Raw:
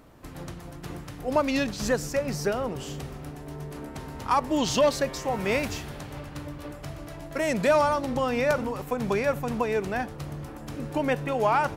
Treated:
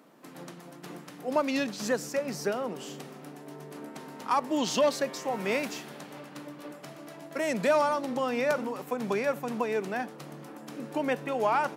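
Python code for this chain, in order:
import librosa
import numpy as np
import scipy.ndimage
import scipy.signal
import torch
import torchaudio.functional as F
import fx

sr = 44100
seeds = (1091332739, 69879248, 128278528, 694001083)

y = scipy.signal.sosfilt(scipy.signal.butter(6, 170.0, 'highpass', fs=sr, output='sos'), x)
y = F.gain(torch.from_numpy(y), -3.0).numpy()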